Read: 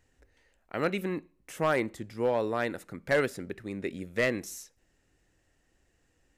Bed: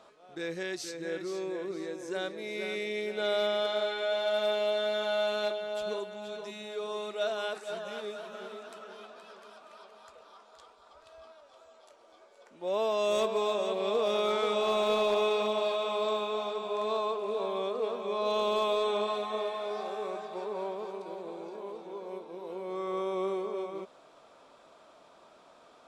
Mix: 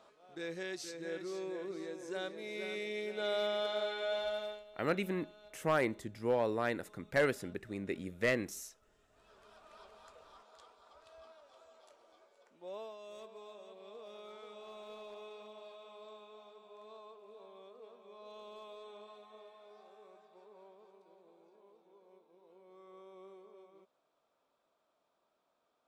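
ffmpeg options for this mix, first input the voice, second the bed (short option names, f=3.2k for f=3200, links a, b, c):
-filter_complex "[0:a]adelay=4050,volume=-4dB[a];[1:a]volume=17.5dB,afade=t=out:st=4.18:d=0.46:silence=0.0794328,afade=t=in:st=9.08:d=0.75:silence=0.0707946,afade=t=out:st=11.88:d=1.1:silence=0.125893[b];[a][b]amix=inputs=2:normalize=0"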